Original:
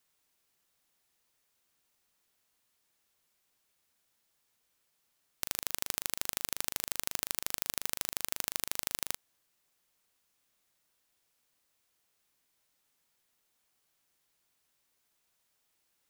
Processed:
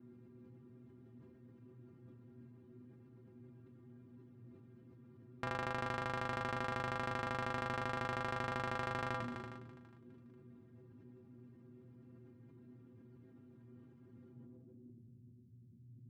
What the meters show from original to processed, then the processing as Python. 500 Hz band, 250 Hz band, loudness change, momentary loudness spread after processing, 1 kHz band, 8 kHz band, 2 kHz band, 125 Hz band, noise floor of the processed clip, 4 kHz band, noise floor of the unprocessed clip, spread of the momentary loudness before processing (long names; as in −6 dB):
+8.5 dB, +9.0 dB, −5.5 dB, 21 LU, +9.0 dB, −25.0 dB, +2.0 dB, +13.0 dB, −61 dBFS, −11.0 dB, −77 dBFS, 3 LU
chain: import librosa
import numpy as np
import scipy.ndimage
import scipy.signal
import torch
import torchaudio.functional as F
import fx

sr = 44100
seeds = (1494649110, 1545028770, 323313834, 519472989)

p1 = scipy.signal.sosfilt(scipy.signal.butter(2, 50.0, 'highpass', fs=sr, output='sos'), x)
p2 = fx.low_shelf(p1, sr, hz=240.0, db=9.5)
p3 = fx.dmg_noise_band(p2, sr, seeds[0], low_hz=83.0, high_hz=340.0, level_db=-64.0)
p4 = fx.stiff_resonator(p3, sr, f0_hz=120.0, decay_s=0.27, stiffness=0.008)
p5 = fx.filter_sweep_lowpass(p4, sr, from_hz=1400.0, to_hz=150.0, start_s=14.28, end_s=15.17, q=1.2)
p6 = p5 + fx.echo_feedback(p5, sr, ms=411, feedback_pct=30, wet_db=-18.5, dry=0)
p7 = fx.sustainer(p6, sr, db_per_s=28.0)
y = p7 * librosa.db_to_amplitude(13.5)